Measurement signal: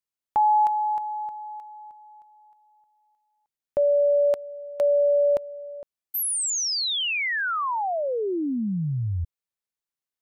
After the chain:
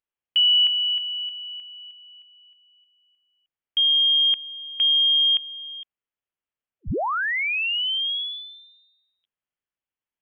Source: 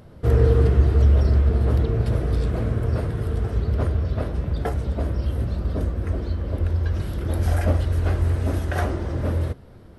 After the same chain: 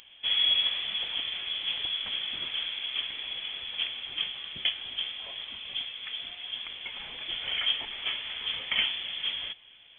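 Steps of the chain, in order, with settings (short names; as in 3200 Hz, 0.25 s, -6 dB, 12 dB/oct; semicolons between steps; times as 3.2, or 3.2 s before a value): HPF 450 Hz 24 dB/oct; inverted band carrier 3800 Hz; gain +1.5 dB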